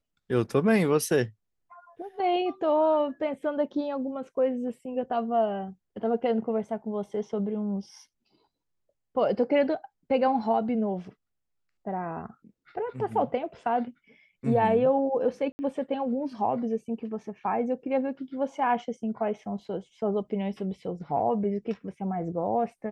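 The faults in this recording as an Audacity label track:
15.520000	15.590000	drop-out 70 ms

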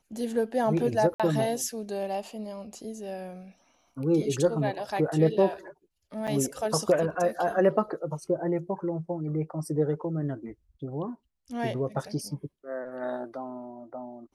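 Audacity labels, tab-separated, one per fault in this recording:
1.140000	1.200000	drop-out 56 ms
6.270000	6.280000	drop-out 7.1 ms

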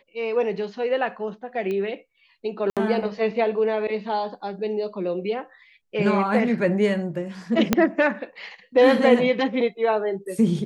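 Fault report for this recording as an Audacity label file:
1.710000	1.710000	click −19 dBFS
2.700000	2.770000	drop-out 67 ms
7.730000	7.730000	click −3 dBFS

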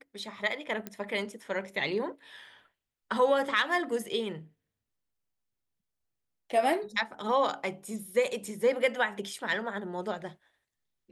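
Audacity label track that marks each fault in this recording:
0.870000	0.870000	click −21 dBFS

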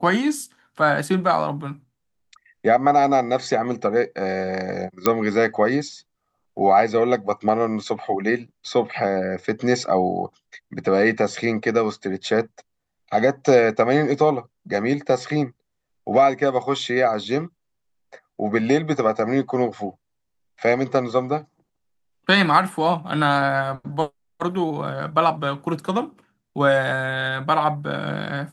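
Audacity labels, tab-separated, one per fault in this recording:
5.060000	5.060000	click −2 dBFS

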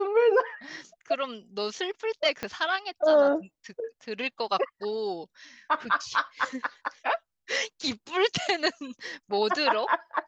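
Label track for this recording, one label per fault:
2.430000	2.430000	click −16 dBFS

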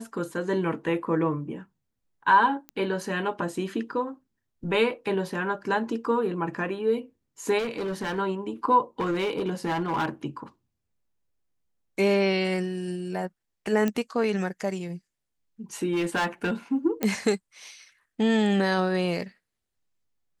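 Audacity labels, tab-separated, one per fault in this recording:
2.690000	2.690000	click −22 dBFS
7.580000	8.190000	clipping −26 dBFS
9.000000	10.090000	clipping −22.5 dBFS
13.880000	13.880000	click −14 dBFS
15.920000	16.520000	clipping −21.5 dBFS
17.030000	17.030000	click −11 dBFS

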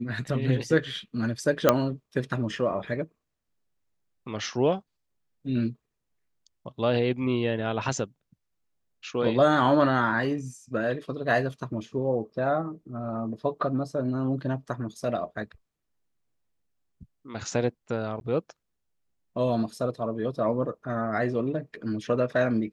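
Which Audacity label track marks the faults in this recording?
1.690000	1.690000	click −4 dBFS
18.200000	18.210000	drop-out 11 ms

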